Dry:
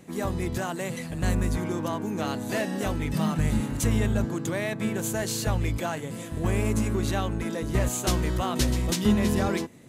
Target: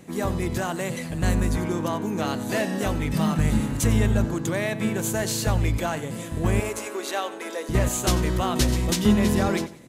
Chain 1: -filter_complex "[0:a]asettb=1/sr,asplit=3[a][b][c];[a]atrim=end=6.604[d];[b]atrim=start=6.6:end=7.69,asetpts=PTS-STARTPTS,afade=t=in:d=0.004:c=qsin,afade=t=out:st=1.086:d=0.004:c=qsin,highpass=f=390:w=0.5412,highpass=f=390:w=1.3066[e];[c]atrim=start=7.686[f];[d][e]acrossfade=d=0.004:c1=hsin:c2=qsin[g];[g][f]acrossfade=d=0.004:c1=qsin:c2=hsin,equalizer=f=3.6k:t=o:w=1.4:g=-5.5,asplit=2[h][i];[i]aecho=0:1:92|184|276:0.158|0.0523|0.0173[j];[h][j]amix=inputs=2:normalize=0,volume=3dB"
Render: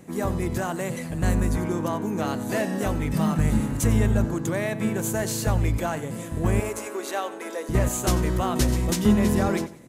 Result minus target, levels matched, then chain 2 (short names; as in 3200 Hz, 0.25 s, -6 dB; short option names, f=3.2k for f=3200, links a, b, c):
4000 Hz band -4.5 dB
-filter_complex "[0:a]asettb=1/sr,asplit=3[a][b][c];[a]atrim=end=6.604[d];[b]atrim=start=6.6:end=7.69,asetpts=PTS-STARTPTS,afade=t=in:d=0.004:c=qsin,afade=t=out:st=1.086:d=0.004:c=qsin,highpass=f=390:w=0.5412,highpass=f=390:w=1.3066[e];[c]atrim=start=7.686[f];[d][e]acrossfade=d=0.004:c1=hsin:c2=qsin[g];[g][f]acrossfade=d=0.004:c1=qsin:c2=hsin,asplit=2[h][i];[i]aecho=0:1:92|184|276:0.158|0.0523|0.0173[j];[h][j]amix=inputs=2:normalize=0,volume=3dB"